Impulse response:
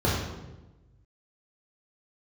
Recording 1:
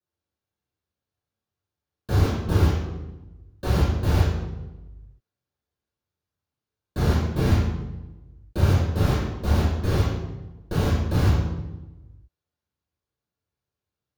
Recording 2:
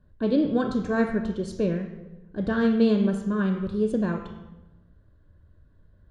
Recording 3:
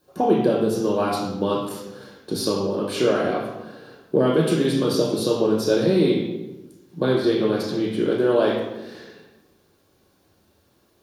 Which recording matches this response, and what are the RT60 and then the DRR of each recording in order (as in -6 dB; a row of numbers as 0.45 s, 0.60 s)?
1; 1.1 s, 1.1 s, 1.1 s; -6.5 dB, 6.0 dB, -2.5 dB